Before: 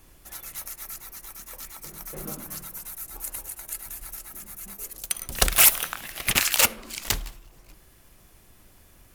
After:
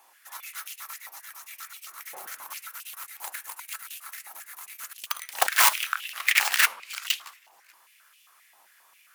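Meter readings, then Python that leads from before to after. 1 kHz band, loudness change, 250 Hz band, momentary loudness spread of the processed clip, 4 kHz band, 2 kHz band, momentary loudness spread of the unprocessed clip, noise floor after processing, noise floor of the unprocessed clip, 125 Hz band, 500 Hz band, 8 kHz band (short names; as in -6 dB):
+4.5 dB, -1.5 dB, under -20 dB, 21 LU, -1.5 dB, +3.5 dB, 21 LU, -60 dBFS, -55 dBFS, under -35 dB, -5.5 dB, -5.5 dB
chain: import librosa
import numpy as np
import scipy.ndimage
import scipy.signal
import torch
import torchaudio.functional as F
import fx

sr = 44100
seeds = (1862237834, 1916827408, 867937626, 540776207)

y = fx.tracing_dist(x, sr, depth_ms=0.26)
y = fx.filter_held_highpass(y, sr, hz=7.5, low_hz=830.0, high_hz=2800.0)
y = y * librosa.db_to_amplitude(-2.5)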